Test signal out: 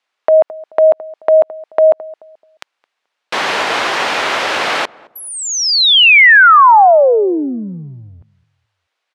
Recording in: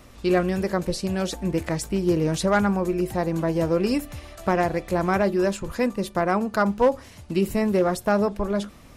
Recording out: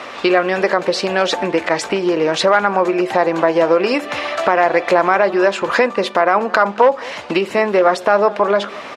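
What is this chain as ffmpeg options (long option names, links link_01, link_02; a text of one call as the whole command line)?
ffmpeg -i in.wav -filter_complex "[0:a]acompressor=threshold=-28dB:ratio=10,highpass=600,lowpass=3100,asplit=2[link_01][link_02];[link_02]adelay=216,lowpass=frequency=910:poles=1,volume=-20.5dB,asplit=2[link_03][link_04];[link_04]adelay=216,lowpass=frequency=910:poles=1,volume=0.33,asplit=2[link_05][link_06];[link_06]adelay=216,lowpass=frequency=910:poles=1,volume=0.33[link_07];[link_01][link_03][link_05][link_07]amix=inputs=4:normalize=0,alimiter=level_in=26dB:limit=-1dB:release=50:level=0:latency=1,volume=-1dB" out.wav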